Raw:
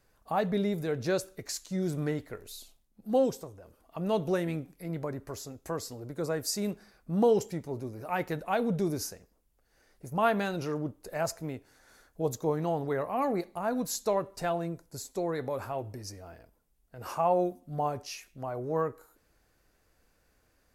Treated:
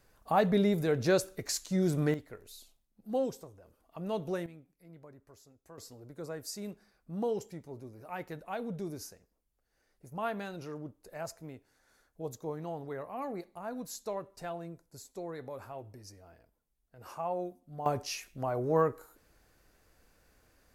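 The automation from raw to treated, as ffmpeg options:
ffmpeg -i in.wav -af "asetnsamples=nb_out_samples=441:pad=0,asendcmd='2.14 volume volume -6dB;4.46 volume volume -18dB;5.78 volume volume -9dB;17.86 volume volume 3dB',volume=2.5dB" out.wav

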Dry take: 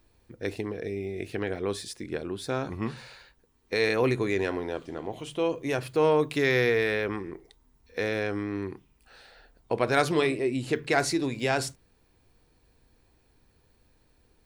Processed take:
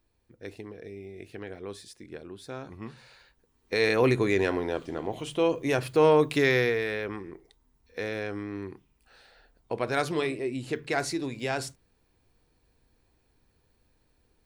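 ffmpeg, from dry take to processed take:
ffmpeg -i in.wav -af "volume=2.5dB,afade=type=in:start_time=2.97:duration=1.15:silence=0.266073,afade=type=out:start_time=6.36:duration=0.43:silence=0.473151" out.wav

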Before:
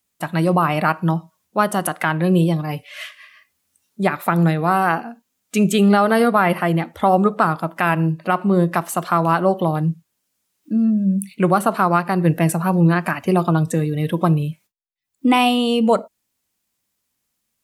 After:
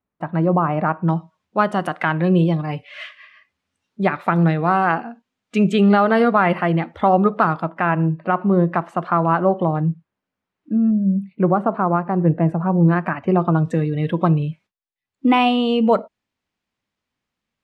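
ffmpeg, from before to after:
ffmpeg -i in.wav -af "asetnsamples=nb_out_samples=441:pad=0,asendcmd='1.09 lowpass f 3200;7.69 lowpass f 1800;10.91 lowpass f 1000;12.88 lowpass f 1700;13.66 lowpass f 3100',lowpass=1200" out.wav

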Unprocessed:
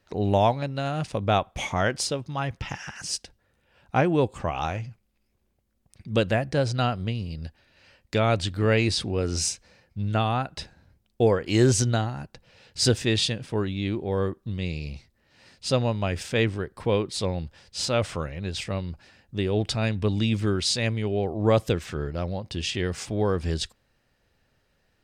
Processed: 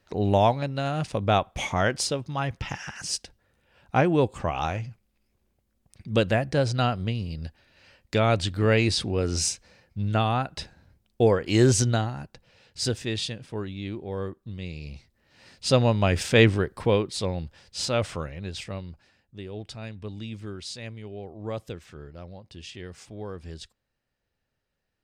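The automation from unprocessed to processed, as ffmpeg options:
ffmpeg -i in.wav -af "volume=13dB,afade=type=out:start_time=11.85:duration=1.05:silence=0.473151,afade=type=in:start_time=14.74:duration=1.75:silence=0.237137,afade=type=out:start_time=16.49:duration=0.59:silence=0.421697,afade=type=out:start_time=17.99:duration=1.4:silence=0.266073" out.wav

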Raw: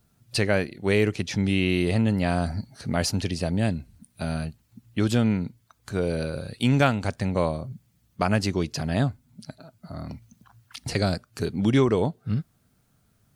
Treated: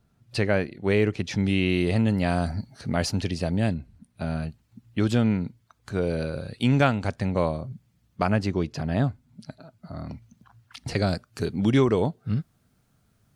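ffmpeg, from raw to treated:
ffmpeg -i in.wav -af "asetnsamples=nb_out_samples=441:pad=0,asendcmd='1.24 lowpass f 5800;1.96 lowpass f 11000;2.51 lowpass f 5500;3.74 lowpass f 2200;4.43 lowpass f 4400;8.3 lowpass f 2000;9.04 lowpass f 3900;11.09 lowpass f 8500',lowpass=frequency=2700:poles=1" out.wav

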